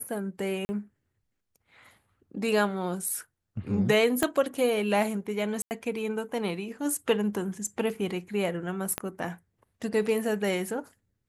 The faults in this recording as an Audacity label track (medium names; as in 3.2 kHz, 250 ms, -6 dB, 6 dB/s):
0.650000	0.690000	dropout 40 ms
4.230000	4.230000	pop -10 dBFS
5.620000	5.710000	dropout 89 ms
7.670000	7.670000	dropout 2.3 ms
8.980000	8.980000	pop -13 dBFS